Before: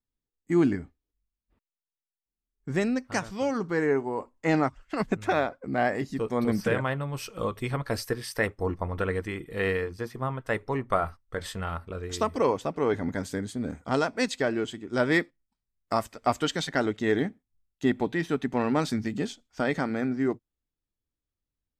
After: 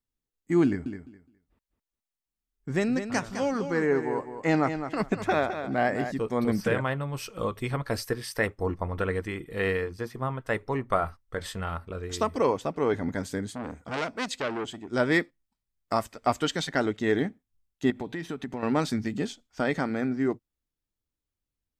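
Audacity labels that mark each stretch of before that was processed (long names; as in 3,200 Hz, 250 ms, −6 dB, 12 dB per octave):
0.650000	6.120000	repeating echo 208 ms, feedback 19%, level −9 dB
13.550000	14.910000	saturating transformer saturates under 2,300 Hz
17.900000	18.630000	downward compressor, threshold −29 dBFS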